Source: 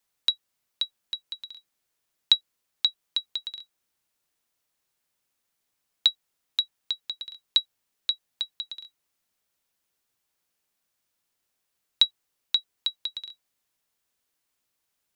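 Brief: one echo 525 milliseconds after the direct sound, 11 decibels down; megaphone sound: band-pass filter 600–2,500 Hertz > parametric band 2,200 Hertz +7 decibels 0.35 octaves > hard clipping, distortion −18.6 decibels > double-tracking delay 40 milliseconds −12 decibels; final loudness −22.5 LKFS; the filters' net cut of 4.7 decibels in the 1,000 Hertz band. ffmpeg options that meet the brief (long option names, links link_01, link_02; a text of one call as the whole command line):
ffmpeg -i in.wav -filter_complex "[0:a]highpass=600,lowpass=2500,equalizer=frequency=1000:width_type=o:gain=-5.5,equalizer=frequency=2200:width_type=o:width=0.35:gain=7,aecho=1:1:525:0.282,asoftclip=type=hard:threshold=-18dB,asplit=2[link_01][link_02];[link_02]adelay=40,volume=-12dB[link_03];[link_01][link_03]amix=inputs=2:normalize=0,volume=14.5dB" out.wav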